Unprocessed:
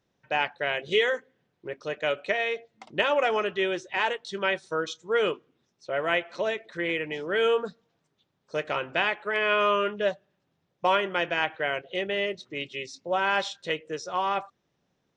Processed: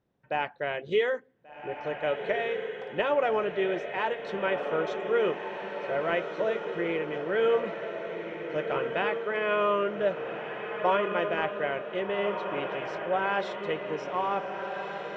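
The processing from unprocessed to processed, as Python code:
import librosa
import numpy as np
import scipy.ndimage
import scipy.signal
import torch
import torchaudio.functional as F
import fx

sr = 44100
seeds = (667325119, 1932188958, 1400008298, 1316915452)

p1 = fx.lowpass(x, sr, hz=1100.0, slope=6)
y = p1 + fx.echo_diffused(p1, sr, ms=1536, feedback_pct=54, wet_db=-6, dry=0)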